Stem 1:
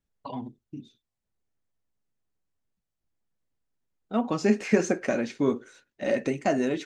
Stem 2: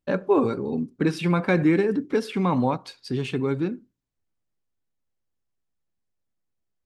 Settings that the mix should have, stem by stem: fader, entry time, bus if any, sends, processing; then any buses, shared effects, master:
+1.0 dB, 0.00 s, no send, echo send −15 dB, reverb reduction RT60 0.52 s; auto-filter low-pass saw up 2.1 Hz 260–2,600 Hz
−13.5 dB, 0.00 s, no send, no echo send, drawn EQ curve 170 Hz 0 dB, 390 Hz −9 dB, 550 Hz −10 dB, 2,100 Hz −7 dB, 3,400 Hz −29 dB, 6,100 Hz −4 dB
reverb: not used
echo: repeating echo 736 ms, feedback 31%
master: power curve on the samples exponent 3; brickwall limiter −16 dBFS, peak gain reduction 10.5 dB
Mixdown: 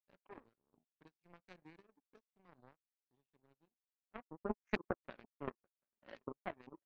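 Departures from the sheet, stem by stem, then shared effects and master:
stem 1 +1.0 dB → −7.5 dB
stem 2: missing drawn EQ curve 170 Hz 0 dB, 390 Hz −9 dB, 550 Hz −10 dB, 2,100 Hz −7 dB, 3,400 Hz −29 dB, 6,100 Hz −4 dB

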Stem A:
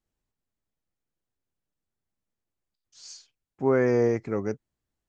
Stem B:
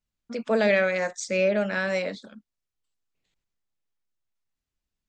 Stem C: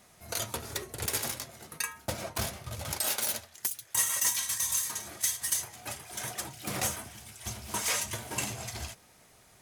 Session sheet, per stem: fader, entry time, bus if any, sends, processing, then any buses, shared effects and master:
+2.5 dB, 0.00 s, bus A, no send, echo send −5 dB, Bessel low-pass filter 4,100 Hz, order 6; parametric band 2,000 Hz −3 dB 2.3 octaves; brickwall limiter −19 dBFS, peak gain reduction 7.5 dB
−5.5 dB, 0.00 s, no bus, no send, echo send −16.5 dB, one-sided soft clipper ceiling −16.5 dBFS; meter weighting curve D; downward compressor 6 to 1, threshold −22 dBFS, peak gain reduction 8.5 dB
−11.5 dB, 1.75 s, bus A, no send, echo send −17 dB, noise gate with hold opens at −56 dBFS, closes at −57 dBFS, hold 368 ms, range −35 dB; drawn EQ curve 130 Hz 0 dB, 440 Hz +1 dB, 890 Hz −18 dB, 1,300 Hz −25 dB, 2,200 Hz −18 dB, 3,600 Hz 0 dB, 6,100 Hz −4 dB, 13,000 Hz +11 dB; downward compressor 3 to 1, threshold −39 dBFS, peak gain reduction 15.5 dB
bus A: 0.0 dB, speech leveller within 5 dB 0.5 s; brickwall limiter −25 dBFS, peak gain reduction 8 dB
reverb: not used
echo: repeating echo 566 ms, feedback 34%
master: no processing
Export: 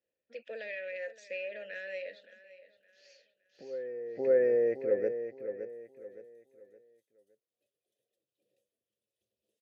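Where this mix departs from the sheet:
stem A +2.5 dB → +14.0 dB
stem C −11.5 dB → −23.5 dB
master: extra formant filter e

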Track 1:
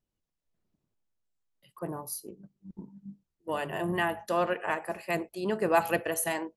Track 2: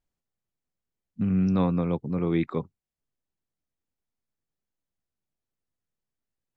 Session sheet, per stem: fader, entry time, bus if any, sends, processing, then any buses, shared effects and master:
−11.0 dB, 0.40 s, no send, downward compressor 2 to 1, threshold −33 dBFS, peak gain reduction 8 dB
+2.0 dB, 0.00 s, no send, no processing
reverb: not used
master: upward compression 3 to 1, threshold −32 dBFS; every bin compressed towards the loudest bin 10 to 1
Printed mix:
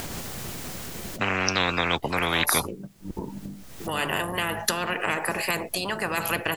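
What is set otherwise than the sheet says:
stem 1 −11.0 dB → −3.5 dB
stem 2 +2.0 dB → +10.5 dB

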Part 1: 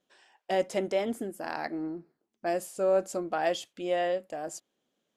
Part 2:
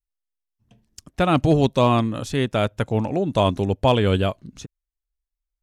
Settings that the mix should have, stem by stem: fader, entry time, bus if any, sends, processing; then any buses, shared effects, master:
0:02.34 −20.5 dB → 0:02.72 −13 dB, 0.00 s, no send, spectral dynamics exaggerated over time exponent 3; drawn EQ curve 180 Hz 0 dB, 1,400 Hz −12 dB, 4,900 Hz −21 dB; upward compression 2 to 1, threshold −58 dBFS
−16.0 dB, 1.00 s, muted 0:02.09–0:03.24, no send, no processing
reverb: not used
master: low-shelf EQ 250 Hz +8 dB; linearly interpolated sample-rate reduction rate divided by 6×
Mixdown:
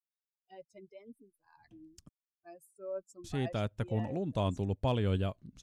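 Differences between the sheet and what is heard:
stem 1: missing drawn EQ curve 180 Hz 0 dB, 1,400 Hz −12 dB, 4,900 Hz −21 dB
master: missing linearly interpolated sample-rate reduction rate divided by 6×

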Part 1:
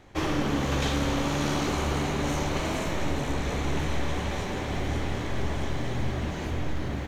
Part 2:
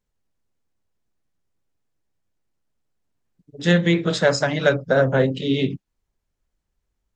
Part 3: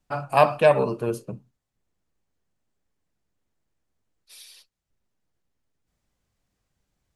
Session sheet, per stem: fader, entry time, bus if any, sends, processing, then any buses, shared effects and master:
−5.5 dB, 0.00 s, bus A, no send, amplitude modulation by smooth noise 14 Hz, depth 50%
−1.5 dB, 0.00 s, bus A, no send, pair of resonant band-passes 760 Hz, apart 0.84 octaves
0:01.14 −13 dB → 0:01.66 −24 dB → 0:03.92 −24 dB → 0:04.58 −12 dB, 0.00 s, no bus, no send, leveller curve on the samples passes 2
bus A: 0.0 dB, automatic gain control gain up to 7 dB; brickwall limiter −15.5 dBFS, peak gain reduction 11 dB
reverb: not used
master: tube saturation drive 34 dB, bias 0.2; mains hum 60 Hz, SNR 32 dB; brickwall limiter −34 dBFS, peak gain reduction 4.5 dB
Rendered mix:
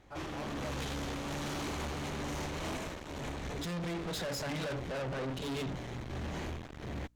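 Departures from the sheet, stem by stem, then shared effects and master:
stem 2: missing pair of resonant band-passes 760 Hz, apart 0.84 octaves
stem 3 −13.0 dB → −24.0 dB

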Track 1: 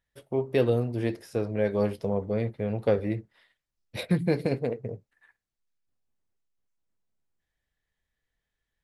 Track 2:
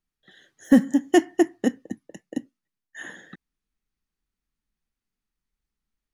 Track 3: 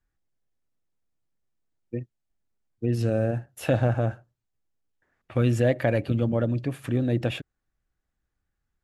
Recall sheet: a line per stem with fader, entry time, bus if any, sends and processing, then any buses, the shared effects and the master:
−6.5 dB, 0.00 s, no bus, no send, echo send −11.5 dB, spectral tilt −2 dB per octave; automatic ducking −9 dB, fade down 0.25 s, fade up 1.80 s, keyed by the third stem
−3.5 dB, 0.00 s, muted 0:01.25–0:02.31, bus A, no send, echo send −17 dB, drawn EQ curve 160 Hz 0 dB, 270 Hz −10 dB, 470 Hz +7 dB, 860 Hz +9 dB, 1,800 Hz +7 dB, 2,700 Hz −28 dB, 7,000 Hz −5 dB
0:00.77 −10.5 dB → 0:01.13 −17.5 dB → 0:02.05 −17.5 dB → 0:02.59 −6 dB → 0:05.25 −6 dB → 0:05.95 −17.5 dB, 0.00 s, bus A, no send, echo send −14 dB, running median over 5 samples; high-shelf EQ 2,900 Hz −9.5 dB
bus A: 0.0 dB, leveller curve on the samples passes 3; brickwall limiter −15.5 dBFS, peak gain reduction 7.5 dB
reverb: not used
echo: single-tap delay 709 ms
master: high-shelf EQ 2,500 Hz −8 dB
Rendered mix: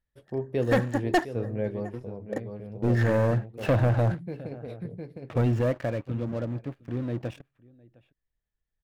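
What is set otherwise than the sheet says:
stem 2 −3.5 dB → −11.5 dB
master: missing high-shelf EQ 2,500 Hz −8 dB

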